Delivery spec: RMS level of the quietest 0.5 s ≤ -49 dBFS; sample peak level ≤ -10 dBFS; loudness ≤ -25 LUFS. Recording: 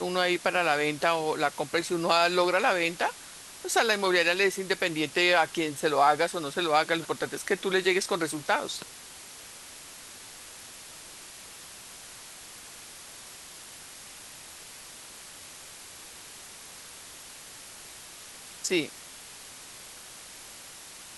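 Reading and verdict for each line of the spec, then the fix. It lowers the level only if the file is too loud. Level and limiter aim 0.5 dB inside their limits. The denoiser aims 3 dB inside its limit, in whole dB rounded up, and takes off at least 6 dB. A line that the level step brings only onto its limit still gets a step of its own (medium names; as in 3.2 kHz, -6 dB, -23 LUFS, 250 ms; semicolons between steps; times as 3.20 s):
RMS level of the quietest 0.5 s -46 dBFS: fail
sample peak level -9.0 dBFS: fail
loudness -26.0 LUFS: pass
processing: noise reduction 6 dB, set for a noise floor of -46 dBFS; peak limiter -10.5 dBFS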